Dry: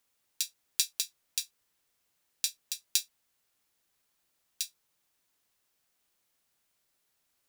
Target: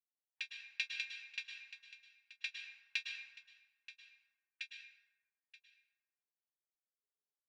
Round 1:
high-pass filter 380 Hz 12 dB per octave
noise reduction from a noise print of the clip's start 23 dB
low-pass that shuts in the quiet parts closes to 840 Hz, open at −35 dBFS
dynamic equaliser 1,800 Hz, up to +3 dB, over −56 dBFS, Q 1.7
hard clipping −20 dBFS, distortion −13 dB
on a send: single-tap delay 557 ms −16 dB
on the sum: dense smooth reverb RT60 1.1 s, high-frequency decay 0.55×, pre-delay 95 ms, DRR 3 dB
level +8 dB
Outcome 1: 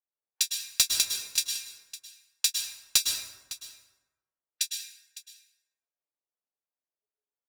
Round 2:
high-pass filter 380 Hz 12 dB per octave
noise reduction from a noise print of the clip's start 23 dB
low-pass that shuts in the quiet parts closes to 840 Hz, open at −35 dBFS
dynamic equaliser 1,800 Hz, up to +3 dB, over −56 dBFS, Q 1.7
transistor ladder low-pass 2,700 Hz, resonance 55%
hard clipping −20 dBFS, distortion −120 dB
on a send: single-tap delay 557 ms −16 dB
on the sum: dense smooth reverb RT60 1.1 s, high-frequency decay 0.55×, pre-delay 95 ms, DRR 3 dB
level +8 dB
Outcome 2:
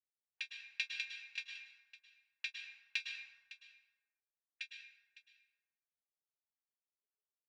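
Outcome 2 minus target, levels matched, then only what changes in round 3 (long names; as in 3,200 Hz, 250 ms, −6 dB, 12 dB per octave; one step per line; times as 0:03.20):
echo 372 ms early
change: single-tap delay 929 ms −16 dB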